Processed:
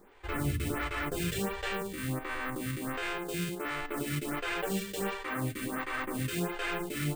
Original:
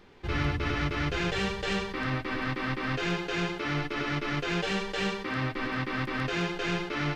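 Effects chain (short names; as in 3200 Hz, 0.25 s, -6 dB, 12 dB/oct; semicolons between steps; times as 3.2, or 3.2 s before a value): 1.67–3.9 stepped spectrum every 50 ms; careless resampling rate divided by 4×, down none, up hold; photocell phaser 1.4 Hz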